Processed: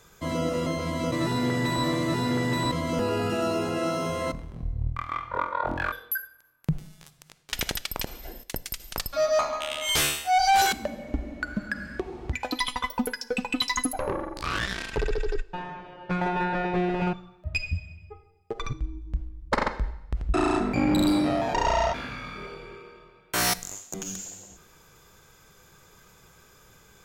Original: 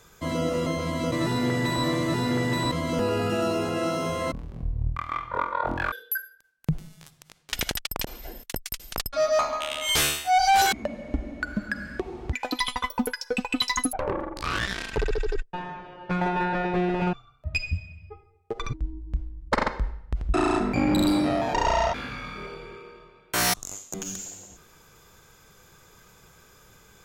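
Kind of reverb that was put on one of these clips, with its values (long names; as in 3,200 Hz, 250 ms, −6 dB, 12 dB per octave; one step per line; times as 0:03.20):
coupled-rooms reverb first 0.81 s, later 2.5 s, from −21 dB, DRR 16 dB
level −1 dB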